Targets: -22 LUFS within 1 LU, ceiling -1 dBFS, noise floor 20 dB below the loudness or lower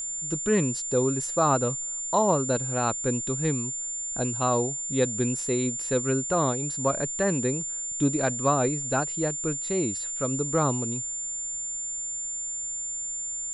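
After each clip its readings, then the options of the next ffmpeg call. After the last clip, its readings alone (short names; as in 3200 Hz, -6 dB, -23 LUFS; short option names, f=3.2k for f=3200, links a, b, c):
steady tone 7200 Hz; tone level -30 dBFS; loudness -26.0 LUFS; peak -10.5 dBFS; loudness target -22.0 LUFS
-> -af "bandreject=f=7.2k:w=30"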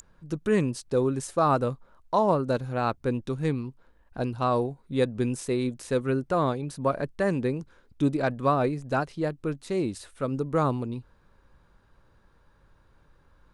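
steady tone none; loudness -27.5 LUFS; peak -11.5 dBFS; loudness target -22.0 LUFS
-> -af "volume=5.5dB"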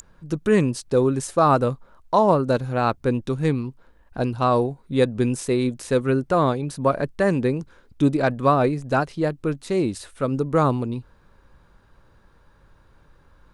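loudness -22.0 LUFS; peak -6.0 dBFS; noise floor -56 dBFS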